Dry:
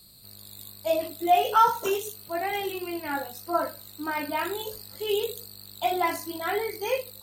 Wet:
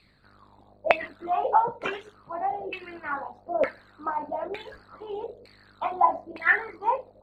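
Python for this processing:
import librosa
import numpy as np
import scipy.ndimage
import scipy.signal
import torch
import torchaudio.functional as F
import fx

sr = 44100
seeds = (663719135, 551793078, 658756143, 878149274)

y = fx.filter_lfo_lowpass(x, sr, shape='saw_down', hz=1.1, low_hz=530.0, high_hz=2300.0, q=6.3)
y = fx.hpss(y, sr, part='harmonic', gain_db=-15)
y = y * librosa.db_to_amplitude(4.0)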